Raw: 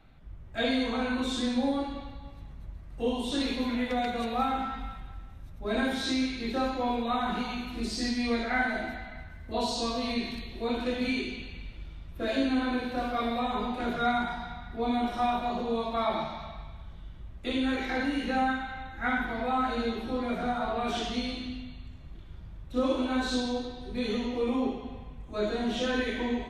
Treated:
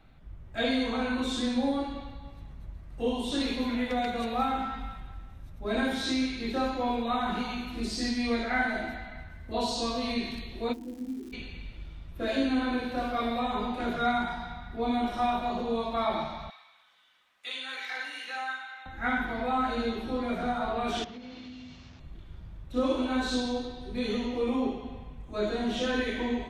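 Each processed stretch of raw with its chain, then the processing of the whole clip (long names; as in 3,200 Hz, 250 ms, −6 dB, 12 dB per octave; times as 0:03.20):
0:10.72–0:11.32: formant resonators in series u + surface crackle 340 per second −44 dBFS
0:16.50–0:18.86: high-pass filter 1,400 Hz + comb filter 4 ms, depth 33%
0:21.04–0:22.00: linear delta modulator 32 kbit/s, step −48 dBFS + high-pass filter 96 Hz + downward compressor 5 to 1, threshold −41 dBFS
whole clip: no processing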